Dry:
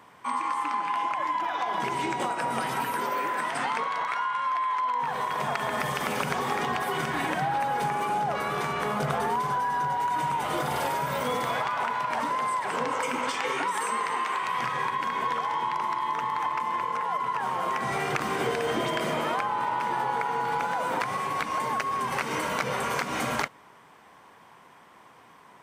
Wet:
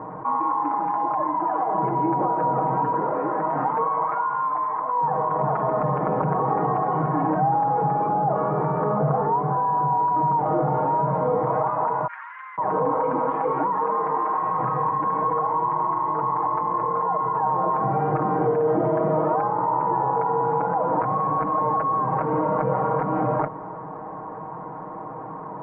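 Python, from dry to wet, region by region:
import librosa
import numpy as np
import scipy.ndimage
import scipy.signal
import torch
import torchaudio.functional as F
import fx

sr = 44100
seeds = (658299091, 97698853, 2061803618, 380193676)

y = fx.chain(x, sr, fx.steep_highpass(hz=1800.0, slope=36),
    fx.air_absorb(metres=320.0), at=(12.07, 12.58))
y = scipy.signal.sosfilt(scipy.signal.butter(4, 1000.0, 'lowpass', fs=sr, output='sos'), y)
y = y + 0.83 * np.pad(y, (int(6.4 * sr / 1000.0), 0))[:len(y)]
y = fx.env_flatten(y, sr, amount_pct=50)
y = y * 10.0 ** (3.0 / 20.0)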